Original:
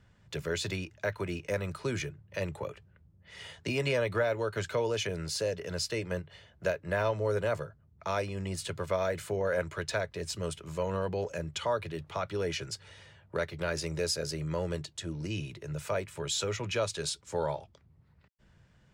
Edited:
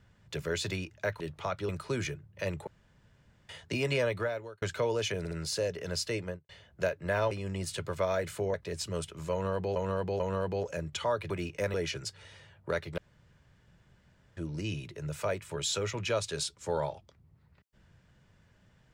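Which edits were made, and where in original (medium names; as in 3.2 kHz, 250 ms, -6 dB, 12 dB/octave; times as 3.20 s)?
1.20–1.64 s: swap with 11.91–12.40 s
2.62–3.44 s: room tone
4.00–4.57 s: fade out
5.14 s: stutter 0.06 s, 3 plays
6.01–6.32 s: studio fade out
7.14–8.22 s: delete
9.45–10.03 s: delete
10.81–11.25 s: loop, 3 plays
13.64–15.03 s: room tone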